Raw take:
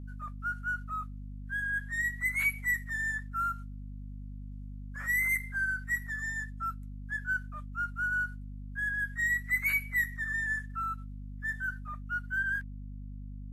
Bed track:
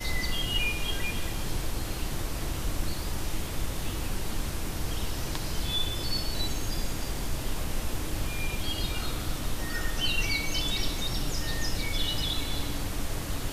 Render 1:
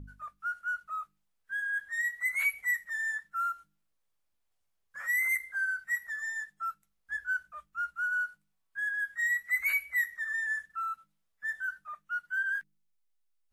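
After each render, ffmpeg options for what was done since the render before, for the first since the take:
-af "bandreject=f=50:t=h:w=4,bandreject=f=100:t=h:w=4,bandreject=f=150:t=h:w=4,bandreject=f=200:t=h:w=4,bandreject=f=250:t=h:w=4,bandreject=f=300:t=h:w=4,bandreject=f=350:t=h:w=4,bandreject=f=400:t=h:w=4,bandreject=f=450:t=h:w=4"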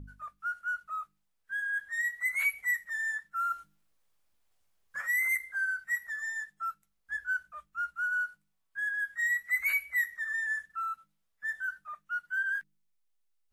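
-filter_complex "[0:a]asplit=3[a][b][c];[a]afade=t=out:st=3.5:d=0.02[d];[b]acontrast=55,afade=t=in:st=3.5:d=0.02,afade=t=out:st=5:d=0.02[e];[c]afade=t=in:st=5:d=0.02[f];[d][e][f]amix=inputs=3:normalize=0"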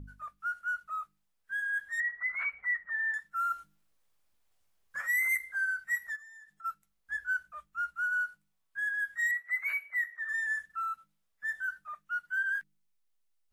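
-filter_complex "[0:a]asettb=1/sr,asplit=3[a][b][c];[a]atrim=end=2.004[d];[b]atrim=start=2:end=3.14,asetpts=PTS-STARTPTS,afade=t=in:d=0.004:c=qsin,afade=t=out:st=1.136:d=0.004:c=qsin,lowpass=f=1.4k:t=q:w=2.1[e];[c]atrim=start=3.136[f];[d][e]acrossfade=d=0.004:c1=hsin:c2=qsin[g];[g][f]acrossfade=d=0.004:c1=qsin:c2=hsin,asplit=3[h][i][j];[h]afade=t=out:st=6.15:d=0.02[k];[i]acompressor=threshold=-50dB:ratio=12:attack=3.2:release=140:knee=1:detection=peak,afade=t=in:st=6.15:d=0.02,afade=t=out:st=6.64:d=0.02[l];[j]afade=t=in:st=6.64:d=0.02[m];[k][l][m]amix=inputs=3:normalize=0,asettb=1/sr,asplit=3[n][o][p];[n]atrim=end=9.314[q];[o]atrim=start=9.31:end=10.29,asetpts=PTS-STARTPTS,afade=t=in:d=0.004:c=qsin,afade=t=out:st=0.976:d=0.004:c=qsin,acrossover=split=390 2400:gain=0.0708 1 0.178[r][s][t];[r][s][t]amix=inputs=3:normalize=0[u];[p]atrim=start=10.286[v];[q][u]acrossfade=d=0.004:c1=hsin:c2=qsin[w];[w][v]acrossfade=d=0.004:c1=qsin:c2=hsin"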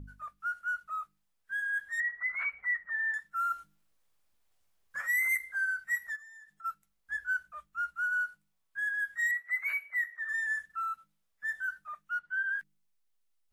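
-filter_complex "[0:a]asettb=1/sr,asplit=3[a][b][c];[a]atrim=end=12.194[d];[b]atrim=start=12.19:end=12.59,asetpts=PTS-STARTPTS,afade=t=in:d=0.004:c=qsin,afade=t=out:st=0.396:d=0.004:c=qsin,aemphasis=mode=reproduction:type=75fm[e];[c]atrim=start=12.586[f];[d][e]acrossfade=d=0.004:c1=hsin:c2=qsin[g];[g][f]acrossfade=d=0.004:c1=qsin:c2=hsin"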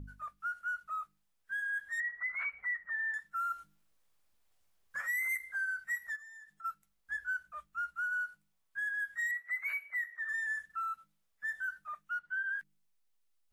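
-af "acompressor=threshold=-36dB:ratio=2"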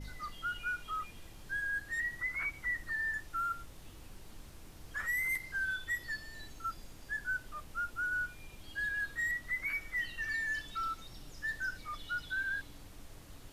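-filter_complex "[1:a]volume=-20dB[a];[0:a][a]amix=inputs=2:normalize=0"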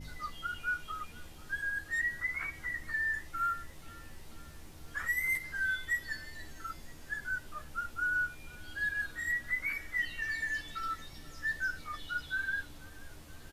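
-filter_complex "[0:a]asplit=2[a][b];[b]adelay=13,volume=-4dB[c];[a][c]amix=inputs=2:normalize=0,aecho=1:1:484|968|1452|1936:0.0708|0.0396|0.0222|0.0124"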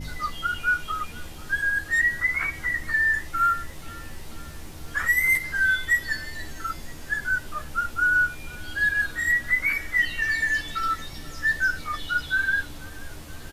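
-af "volume=11dB"

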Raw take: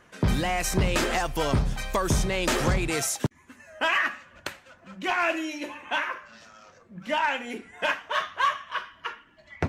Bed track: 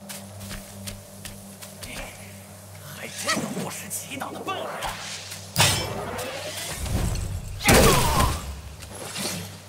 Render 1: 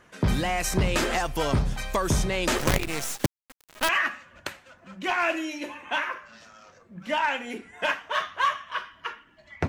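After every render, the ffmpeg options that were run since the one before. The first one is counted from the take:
-filter_complex "[0:a]asettb=1/sr,asplit=3[a][b][c];[a]atrim=end=2.584[d];[b]atrim=start=2.58:end=3.89,asetpts=PTS-STARTPTS,afade=t=in:d=0.004:c=qsin,afade=t=out:st=1.306:d=0.004:c=qsin,acrusher=bits=4:dc=4:mix=0:aa=0.000001[e];[c]atrim=start=3.886[f];[d][e]acrossfade=d=0.004:c1=hsin:c2=qsin[g];[g][f]acrossfade=d=0.004:c1=qsin:c2=hsin"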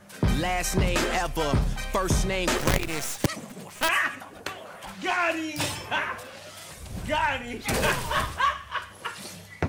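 -filter_complex "[1:a]volume=-11dB[a];[0:a][a]amix=inputs=2:normalize=0"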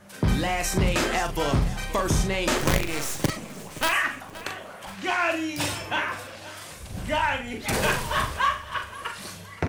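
-filter_complex "[0:a]asplit=2[a][b];[b]adelay=41,volume=-7dB[c];[a][c]amix=inputs=2:normalize=0,aecho=1:1:522|1044|1566:0.133|0.0493|0.0183"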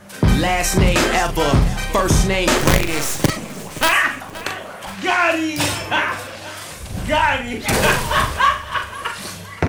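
-af "volume=8dB,alimiter=limit=-1dB:level=0:latency=1"

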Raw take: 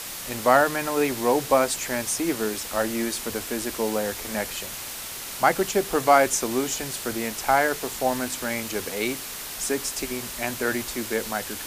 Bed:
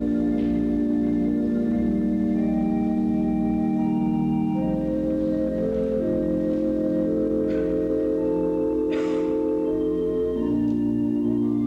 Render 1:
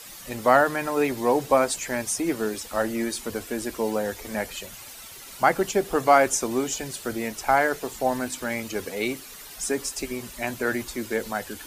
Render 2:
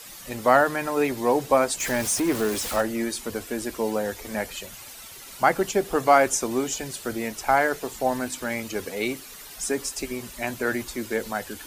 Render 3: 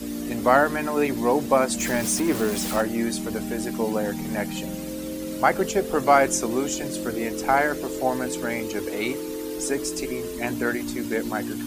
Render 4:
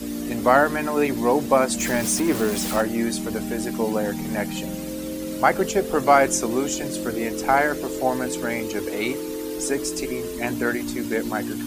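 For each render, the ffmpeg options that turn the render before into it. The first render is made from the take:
-af "afftdn=nr=11:nf=-36"
-filter_complex "[0:a]asettb=1/sr,asplit=3[a][b][c];[a]atrim=end=1.804[d];[b]atrim=start=1.8:end=2.81,asetpts=PTS-STARTPTS,afade=t=in:d=0.004:c=qsin,afade=t=out:st=1.006:d=0.004:c=qsin,aeval=exprs='val(0)+0.5*0.0422*sgn(val(0))':c=same[e];[c]atrim=start=2.806[f];[d][e]acrossfade=d=0.004:c1=hsin:c2=qsin[g];[g][f]acrossfade=d=0.004:c1=qsin:c2=hsin"
-filter_complex "[1:a]volume=-8.5dB[a];[0:a][a]amix=inputs=2:normalize=0"
-af "volume=1.5dB,alimiter=limit=-3dB:level=0:latency=1"

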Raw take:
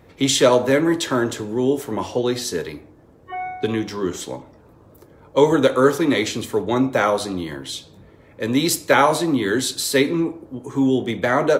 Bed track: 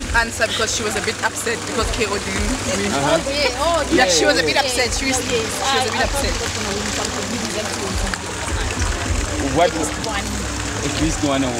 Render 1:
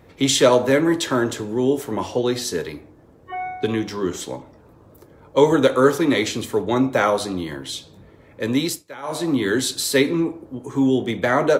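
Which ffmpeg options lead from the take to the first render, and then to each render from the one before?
-filter_complex "[0:a]asplit=3[a][b][c];[a]atrim=end=8.84,asetpts=PTS-STARTPTS,afade=t=out:st=8.42:d=0.42:c=qsin:silence=0.0794328[d];[b]atrim=start=8.84:end=9.02,asetpts=PTS-STARTPTS,volume=-22dB[e];[c]atrim=start=9.02,asetpts=PTS-STARTPTS,afade=t=in:d=0.42:c=qsin:silence=0.0794328[f];[d][e][f]concat=n=3:v=0:a=1"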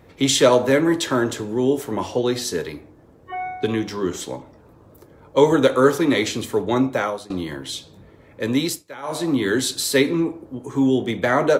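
-filter_complex "[0:a]asplit=2[a][b];[a]atrim=end=7.3,asetpts=PTS-STARTPTS,afade=t=out:st=6.8:d=0.5:silence=0.105925[c];[b]atrim=start=7.3,asetpts=PTS-STARTPTS,afade=t=in:d=0.004:c=hsin:silence=0.105925[d];[c][d]concat=n=2:v=0:a=1"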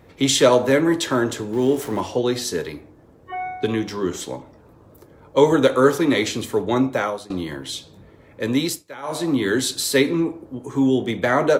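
-filter_complex "[0:a]asettb=1/sr,asplit=3[a][b][c];[a]atrim=end=1.534[d];[b]atrim=start=1.53:end=2.01,asetpts=PTS-STARTPTS,afade=t=in:d=0.004:c=qsin,afade=t=out:st=0.476:d=0.004:c=qsin,aeval=exprs='val(0)+0.5*0.0178*sgn(val(0))':c=same[e];[c]atrim=start=2.006[f];[d][e]acrossfade=d=0.004:c1=hsin:c2=qsin[g];[g][f]acrossfade=d=0.004:c1=qsin:c2=hsin"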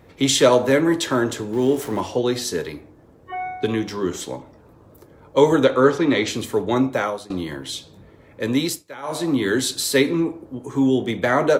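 -filter_complex "[0:a]asettb=1/sr,asplit=3[a][b][c];[a]atrim=end=5.644[d];[b]atrim=start=5.64:end=6.28,asetpts=PTS-STARTPTS,afade=t=in:d=0.004:c=qsin,afade=t=out:st=0.636:d=0.004:c=qsin,lowpass=5k[e];[c]atrim=start=6.276[f];[d][e]acrossfade=d=0.004:c1=hsin:c2=qsin[g];[g][f]acrossfade=d=0.004:c1=qsin:c2=hsin"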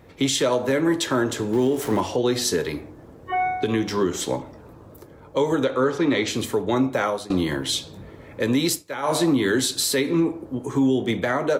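-af "dynaudnorm=f=580:g=3:m=7.5dB,alimiter=limit=-12dB:level=0:latency=1:release=231"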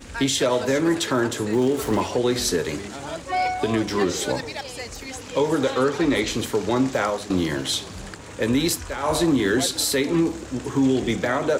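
-filter_complex "[1:a]volume=-16dB[a];[0:a][a]amix=inputs=2:normalize=0"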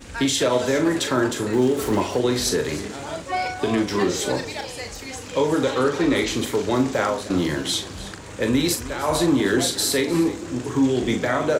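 -filter_complex "[0:a]asplit=2[a][b];[b]adelay=40,volume=-7.5dB[c];[a][c]amix=inputs=2:normalize=0,aecho=1:1:309:0.15"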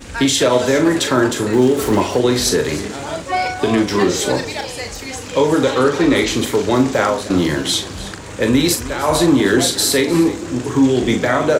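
-af "volume=6dB"

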